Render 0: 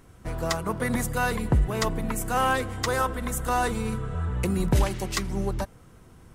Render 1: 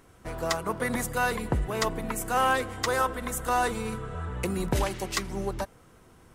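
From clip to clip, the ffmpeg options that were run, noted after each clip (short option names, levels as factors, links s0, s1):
-af "bass=f=250:g=-7,treble=f=4000:g=-1"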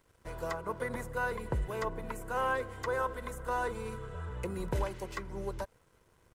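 -filter_complex "[0:a]aecho=1:1:2:0.41,acrossover=split=800|2000[s0][s1][s2];[s2]acompressor=threshold=0.00631:ratio=6[s3];[s0][s1][s3]amix=inputs=3:normalize=0,aeval=exprs='sgn(val(0))*max(abs(val(0))-0.00126,0)':c=same,volume=0.447"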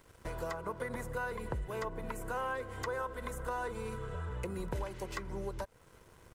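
-af "acompressor=threshold=0.00501:ratio=3,volume=2.37"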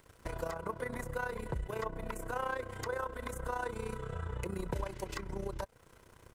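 -filter_complex "[0:a]acrossover=split=880[s0][s1];[s1]asoftclip=type=hard:threshold=0.02[s2];[s0][s2]amix=inputs=2:normalize=0,tremolo=f=30:d=0.75,volume=1.5"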